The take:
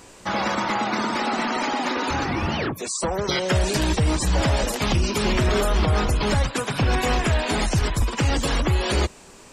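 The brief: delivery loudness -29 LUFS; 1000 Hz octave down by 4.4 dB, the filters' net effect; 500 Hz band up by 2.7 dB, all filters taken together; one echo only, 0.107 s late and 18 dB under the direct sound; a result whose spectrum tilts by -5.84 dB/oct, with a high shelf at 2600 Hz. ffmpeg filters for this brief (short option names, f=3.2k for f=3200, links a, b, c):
-af "equalizer=f=500:t=o:g=5.5,equalizer=f=1k:t=o:g=-6.5,highshelf=f=2.6k:g=-9,aecho=1:1:107:0.126,volume=-5.5dB"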